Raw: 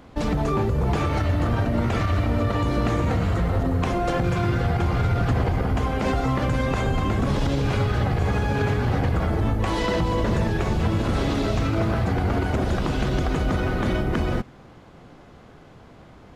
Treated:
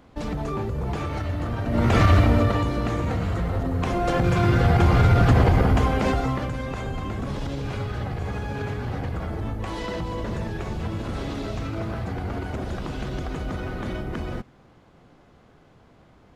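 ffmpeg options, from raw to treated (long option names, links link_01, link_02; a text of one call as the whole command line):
ffmpeg -i in.wav -af "volume=15dB,afade=type=in:start_time=1.63:duration=0.43:silence=0.237137,afade=type=out:start_time=2.06:duration=0.67:silence=0.316228,afade=type=in:start_time=3.71:duration=1.14:silence=0.398107,afade=type=out:start_time=5.61:duration=0.92:silence=0.251189" out.wav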